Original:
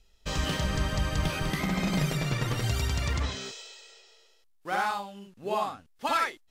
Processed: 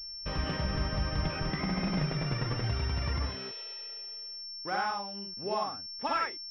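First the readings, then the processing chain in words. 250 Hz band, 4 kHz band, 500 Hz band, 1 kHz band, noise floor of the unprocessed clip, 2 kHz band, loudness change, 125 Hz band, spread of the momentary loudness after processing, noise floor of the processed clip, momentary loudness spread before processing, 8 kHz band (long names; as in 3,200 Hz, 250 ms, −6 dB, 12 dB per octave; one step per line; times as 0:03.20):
−3.0 dB, 0.0 dB, −3.0 dB, −3.0 dB, −63 dBFS, −4.5 dB, −3.5 dB, −3.0 dB, 8 LU, −43 dBFS, 12 LU, below −20 dB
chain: in parallel at +1 dB: downward compressor, threshold −42 dBFS, peak gain reduction 18 dB
on the sum: switching amplifier with a slow clock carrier 5,400 Hz
level −4.5 dB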